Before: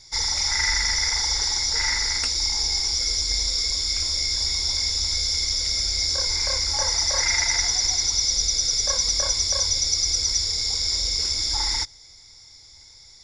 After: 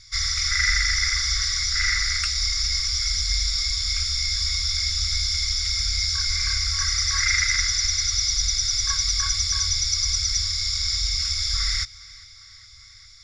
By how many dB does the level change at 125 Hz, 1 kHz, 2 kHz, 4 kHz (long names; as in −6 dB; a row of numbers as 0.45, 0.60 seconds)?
+5.0, −3.5, +3.5, −0.5 decibels